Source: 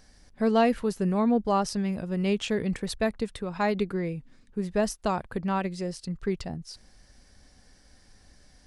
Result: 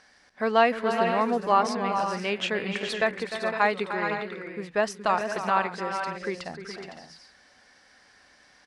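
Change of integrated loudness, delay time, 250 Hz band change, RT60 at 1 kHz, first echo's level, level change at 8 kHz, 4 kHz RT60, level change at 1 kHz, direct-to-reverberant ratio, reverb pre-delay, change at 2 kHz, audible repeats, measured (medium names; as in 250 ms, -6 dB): +1.5 dB, 303 ms, -6.0 dB, no reverb, -11.0 dB, -2.0 dB, no reverb, +6.5 dB, no reverb, no reverb, +9.0 dB, 5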